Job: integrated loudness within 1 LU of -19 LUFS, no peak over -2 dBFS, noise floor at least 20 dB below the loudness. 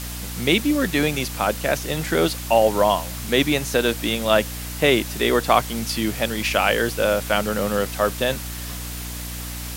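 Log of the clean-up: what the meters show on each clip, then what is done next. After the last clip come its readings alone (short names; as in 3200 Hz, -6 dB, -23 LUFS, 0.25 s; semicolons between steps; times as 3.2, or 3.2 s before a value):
hum 60 Hz; harmonics up to 300 Hz; hum level -31 dBFS; noise floor -32 dBFS; noise floor target -42 dBFS; loudness -21.5 LUFS; peak -2.5 dBFS; loudness target -19.0 LUFS
-> de-hum 60 Hz, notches 5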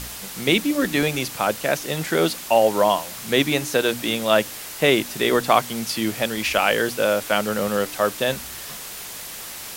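hum none; noise floor -35 dBFS; noise floor target -41 dBFS
-> denoiser 6 dB, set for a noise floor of -35 dBFS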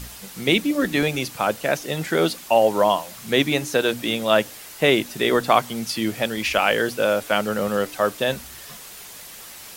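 noise floor -41 dBFS; noise floor target -42 dBFS
-> denoiser 6 dB, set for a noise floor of -41 dBFS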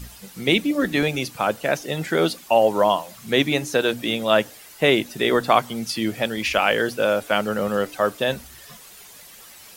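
noise floor -45 dBFS; loudness -21.5 LUFS; peak -2.5 dBFS; loudness target -19.0 LUFS
-> gain +2.5 dB; limiter -2 dBFS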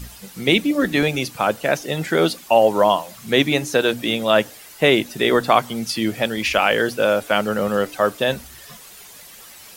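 loudness -19.0 LUFS; peak -2.0 dBFS; noise floor -43 dBFS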